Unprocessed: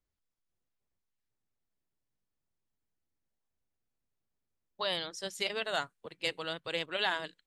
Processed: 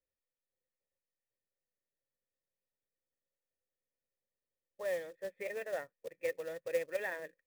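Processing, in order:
formant resonators in series e
notch filter 2,900 Hz, Q 7.3
floating-point word with a short mantissa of 2 bits
level +7.5 dB

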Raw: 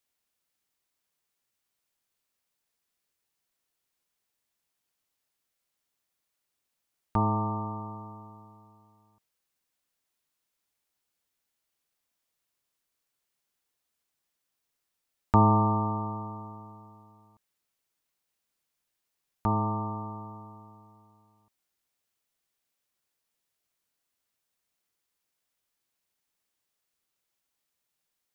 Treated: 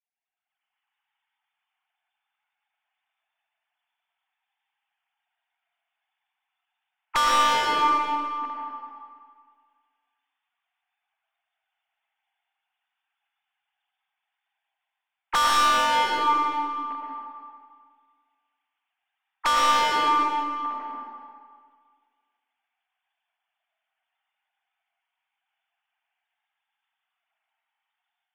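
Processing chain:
three sine waves on the formant tracks
automatic gain control gain up to 14 dB
asymmetric clip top −24 dBFS, bottom −17 dBFS
dynamic equaliser 270 Hz, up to −5 dB, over −48 dBFS, Q 2.4
convolution reverb RT60 1.8 s, pre-delay 65 ms, DRR −2.5 dB

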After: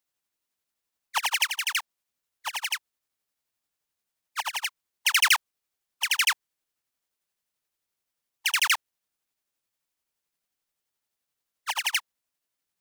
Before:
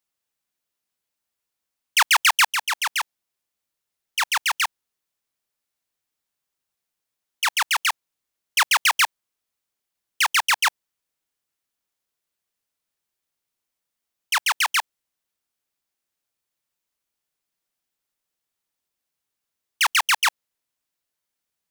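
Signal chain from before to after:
time stretch by overlap-add 0.59×, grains 174 ms

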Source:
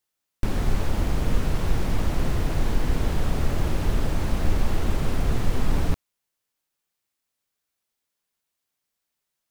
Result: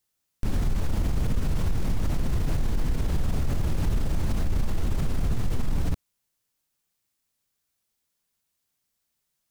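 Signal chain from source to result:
bass and treble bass +7 dB, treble +4 dB
brickwall limiter −17.5 dBFS, peak gain reduction 15 dB

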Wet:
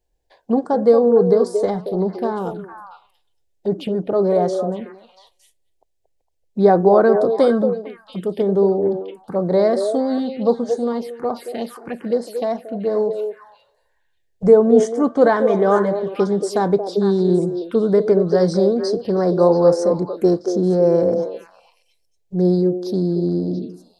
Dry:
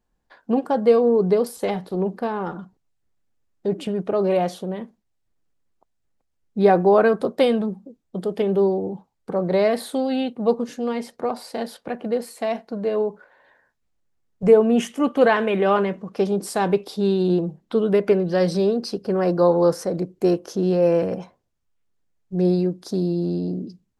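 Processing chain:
echo through a band-pass that steps 228 ms, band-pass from 490 Hz, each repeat 1.4 octaves, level −4 dB
phaser swept by the level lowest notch 210 Hz, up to 2,700 Hz, full sweep at −20 dBFS
level +3 dB

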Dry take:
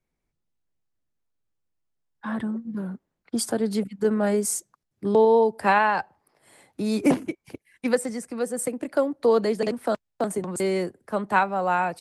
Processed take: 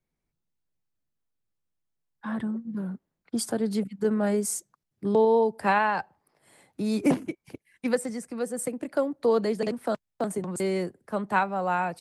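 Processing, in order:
parametric band 160 Hz +3.5 dB 0.97 octaves
level −3.5 dB

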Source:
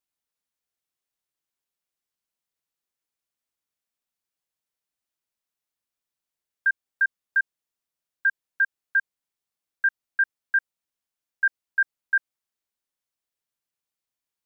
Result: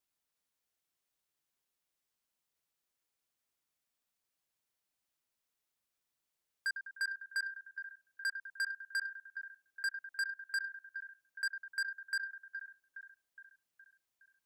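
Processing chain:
downward compressor 6 to 1, threshold −24 dBFS, peak gain reduction 6.5 dB
echo with a time of its own for lows and highs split 1,600 Hz, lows 101 ms, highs 416 ms, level −15 dB
soft clipping −32.5 dBFS, distortion −6 dB
level +1 dB

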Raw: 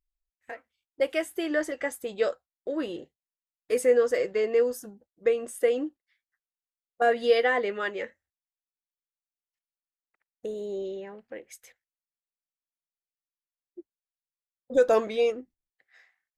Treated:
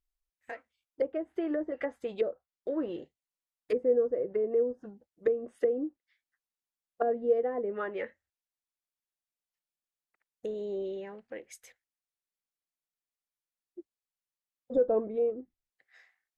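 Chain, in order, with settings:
treble cut that deepens with the level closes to 480 Hz, closed at −23.5 dBFS
level −1.5 dB

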